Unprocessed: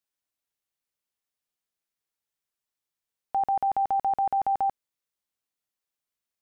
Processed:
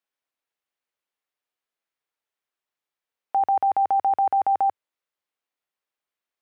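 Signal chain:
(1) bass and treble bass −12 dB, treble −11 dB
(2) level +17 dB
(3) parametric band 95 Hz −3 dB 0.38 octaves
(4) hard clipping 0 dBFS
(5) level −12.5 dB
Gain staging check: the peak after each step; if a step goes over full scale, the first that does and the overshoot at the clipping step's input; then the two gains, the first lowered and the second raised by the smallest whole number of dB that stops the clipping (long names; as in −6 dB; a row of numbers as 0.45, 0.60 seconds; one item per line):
−20.5, −3.5, −3.5, −3.5, −16.0 dBFS
no step passes full scale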